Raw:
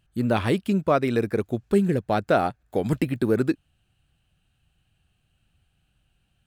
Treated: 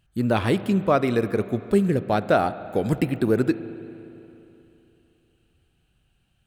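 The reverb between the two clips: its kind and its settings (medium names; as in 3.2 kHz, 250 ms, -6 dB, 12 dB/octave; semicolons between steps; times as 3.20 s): spring tank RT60 3.1 s, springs 36/57 ms, chirp 35 ms, DRR 13.5 dB; trim +1 dB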